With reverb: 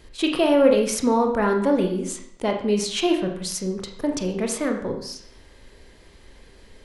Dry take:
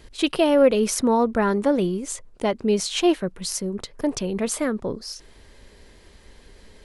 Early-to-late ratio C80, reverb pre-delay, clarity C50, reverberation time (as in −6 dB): 9.5 dB, 23 ms, 7.5 dB, 0.65 s